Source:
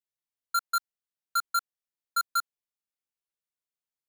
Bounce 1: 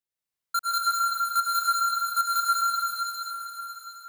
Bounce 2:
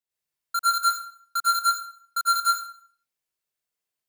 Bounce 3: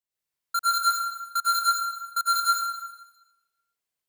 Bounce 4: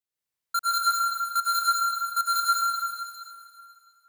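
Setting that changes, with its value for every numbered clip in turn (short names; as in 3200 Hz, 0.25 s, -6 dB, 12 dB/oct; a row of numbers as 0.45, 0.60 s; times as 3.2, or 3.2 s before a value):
plate-style reverb, RT60: 5.1, 0.51, 1.1, 2.4 s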